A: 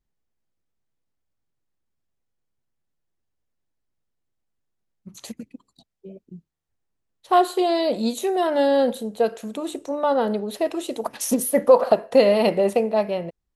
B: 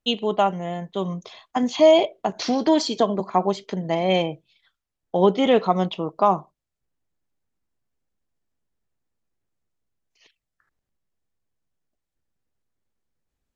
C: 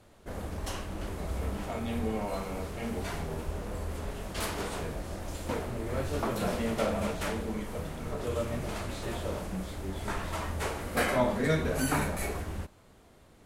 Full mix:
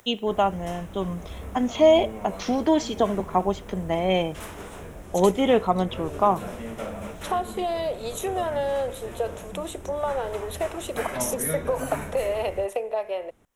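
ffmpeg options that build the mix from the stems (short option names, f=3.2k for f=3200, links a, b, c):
-filter_complex "[0:a]acompressor=mode=upward:threshold=-25dB:ratio=2.5,highpass=f=420:w=0.5412,highpass=f=420:w=1.3066,acompressor=threshold=-25dB:ratio=4,volume=0.5dB[a];[1:a]volume=-2dB[b];[2:a]volume=-4dB[c];[a][b][c]amix=inputs=3:normalize=0,equalizer=f=4.5k:w=4.3:g=-13"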